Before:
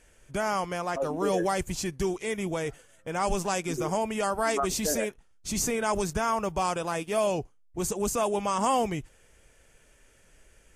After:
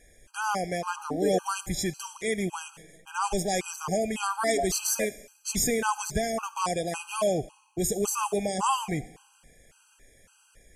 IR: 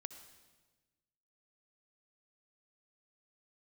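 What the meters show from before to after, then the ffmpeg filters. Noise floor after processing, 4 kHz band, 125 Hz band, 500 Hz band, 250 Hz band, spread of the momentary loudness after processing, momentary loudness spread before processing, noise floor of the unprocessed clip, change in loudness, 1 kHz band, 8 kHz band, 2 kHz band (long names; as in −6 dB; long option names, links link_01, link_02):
−63 dBFS, +2.0 dB, 0.0 dB, −1.0 dB, −0.5 dB, 8 LU, 7 LU, −61 dBFS, 0.0 dB, −1.0 dB, +3.0 dB, +0.5 dB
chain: -filter_complex "[0:a]asplit=2[link_01][link_02];[1:a]atrim=start_sample=2205,asetrate=48510,aresample=44100,highshelf=frequency=2700:gain=11.5[link_03];[link_02][link_03]afir=irnorm=-1:irlink=0,volume=-4dB[link_04];[link_01][link_04]amix=inputs=2:normalize=0,afftfilt=real='re*gt(sin(2*PI*1.8*pts/sr)*(1-2*mod(floor(b*sr/1024/810),2)),0)':imag='im*gt(sin(2*PI*1.8*pts/sr)*(1-2*mod(floor(b*sr/1024/810),2)),0)':win_size=1024:overlap=0.75"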